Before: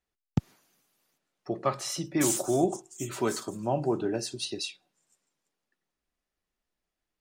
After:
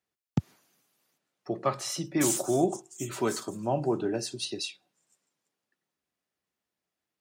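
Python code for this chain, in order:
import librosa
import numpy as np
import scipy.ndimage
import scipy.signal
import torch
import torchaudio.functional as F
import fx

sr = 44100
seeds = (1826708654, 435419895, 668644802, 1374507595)

y = scipy.signal.sosfilt(scipy.signal.butter(4, 85.0, 'highpass', fs=sr, output='sos'), x)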